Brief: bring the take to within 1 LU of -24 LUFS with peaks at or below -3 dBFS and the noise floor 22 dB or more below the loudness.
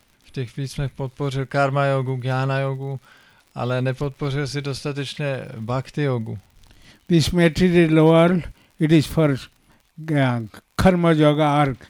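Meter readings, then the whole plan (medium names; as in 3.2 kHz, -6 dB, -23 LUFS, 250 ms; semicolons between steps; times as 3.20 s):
tick rate 58 per s; loudness -20.5 LUFS; peak level -6.0 dBFS; loudness target -24.0 LUFS
-> de-click; trim -3.5 dB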